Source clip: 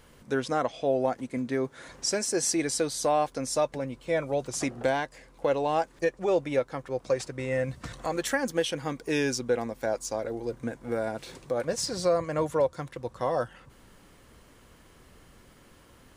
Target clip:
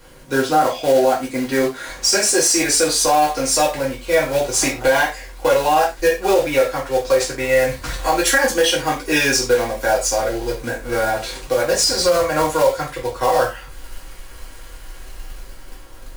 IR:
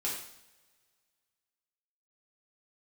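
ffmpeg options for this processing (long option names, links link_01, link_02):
-filter_complex "[0:a]asubboost=boost=7.5:cutoff=51,acrossover=split=380|1000[link_01][link_02][link_03];[link_03]dynaudnorm=framelen=110:gausssize=17:maxgain=5dB[link_04];[link_01][link_02][link_04]amix=inputs=3:normalize=0,acrusher=bits=3:mode=log:mix=0:aa=0.000001[link_05];[1:a]atrim=start_sample=2205,afade=type=out:start_time=0.29:duration=0.01,atrim=end_sample=13230,asetrate=83790,aresample=44100[link_06];[link_05][link_06]afir=irnorm=-1:irlink=0,alimiter=level_in=17.5dB:limit=-1dB:release=50:level=0:latency=1,volume=-5dB"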